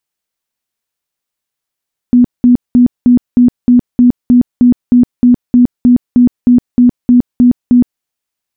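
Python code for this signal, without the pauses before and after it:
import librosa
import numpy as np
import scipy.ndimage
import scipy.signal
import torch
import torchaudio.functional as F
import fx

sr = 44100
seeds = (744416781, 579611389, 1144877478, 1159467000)

y = fx.tone_burst(sr, hz=245.0, cycles=28, every_s=0.31, bursts=19, level_db=-2.5)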